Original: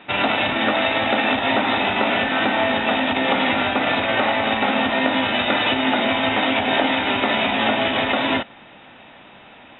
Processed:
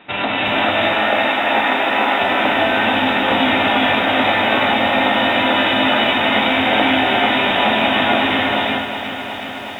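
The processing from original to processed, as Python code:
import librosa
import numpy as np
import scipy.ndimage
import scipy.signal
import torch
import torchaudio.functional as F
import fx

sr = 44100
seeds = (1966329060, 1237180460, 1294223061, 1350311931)

y = fx.bandpass_edges(x, sr, low_hz=330.0, high_hz=3200.0, at=(0.59, 2.21))
y = fx.rev_gated(y, sr, seeds[0], gate_ms=450, shape='rising', drr_db=-3.0)
y = fx.echo_crushed(y, sr, ms=367, feedback_pct=80, bits=7, wet_db=-10.5)
y = F.gain(torch.from_numpy(y), -1.0).numpy()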